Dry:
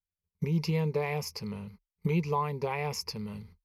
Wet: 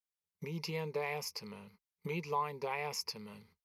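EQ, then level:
high-pass filter 550 Hz 6 dB per octave
−2.5 dB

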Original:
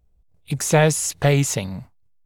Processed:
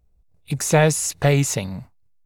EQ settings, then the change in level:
notch filter 3,200 Hz, Q 14
0.0 dB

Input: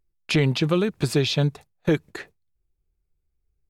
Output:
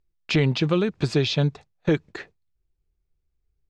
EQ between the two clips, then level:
high-frequency loss of the air 160 metres
parametric band 7,400 Hz +8 dB 1.6 octaves
0.0 dB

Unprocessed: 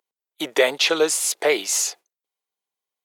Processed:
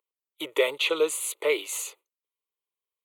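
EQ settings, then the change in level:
phaser with its sweep stopped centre 1,100 Hz, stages 8
−4.0 dB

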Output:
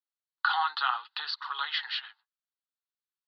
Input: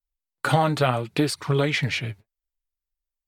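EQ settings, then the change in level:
Chebyshev band-pass filter 780–4,500 Hz, order 4
phaser with its sweep stopped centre 2,300 Hz, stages 6
+1.0 dB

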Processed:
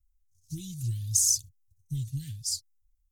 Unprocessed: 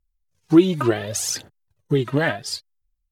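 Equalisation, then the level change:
Chebyshev band-stop filter 100–6,100 Hz, order 3
+3.5 dB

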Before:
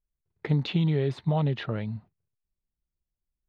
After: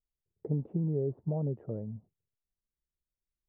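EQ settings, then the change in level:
transistor ladder low-pass 630 Hz, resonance 35%
0.0 dB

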